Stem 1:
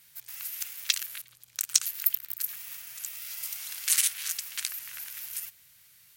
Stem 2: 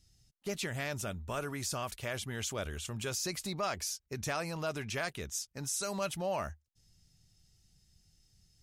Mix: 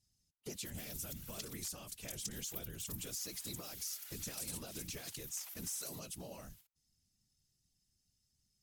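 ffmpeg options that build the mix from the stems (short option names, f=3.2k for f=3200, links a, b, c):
-filter_complex "[0:a]highpass=1.1k,aeval=exprs='val(0)*sin(2*PI*700*n/s)':c=same,acompressor=threshold=-44dB:ratio=2.5,adelay=500,volume=3dB[a];[1:a]aemphasis=mode=production:type=cd,acompressor=threshold=-35dB:ratio=3,volume=0dB[b];[a][b]amix=inputs=2:normalize=0,agate=range=-9dB:threshold=-52dB:ratio=16:detection=peak,acrossover=split=440|3000[c][d][e];[d]acompressor=threshold=-50dB:ratio=6[f];[c][f][e]amix=inputs=3:normalize=0,afftfilt=real='hypot(re,im)*cos(2*PI*random(0))':imag='hypot(re,im)*sin(2*PI*random(1))':win_size=512:overlap=0.75"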